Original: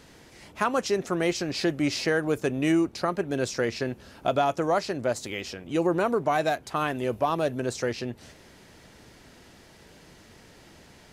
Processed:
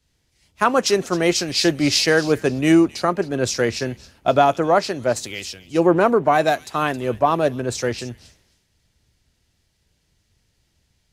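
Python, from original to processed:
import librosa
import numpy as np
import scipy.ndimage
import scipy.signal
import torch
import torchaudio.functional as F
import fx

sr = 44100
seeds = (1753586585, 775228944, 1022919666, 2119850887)

y = fx.echo_wet_highpass(x, sr, ms=269, feedback_pct=32, hz=3500.0, wet_db=-8.5)
y = fx.band_widen(y, sr, depth_pct=100)
y = y * 10.0 ** (7.0 / 20.0)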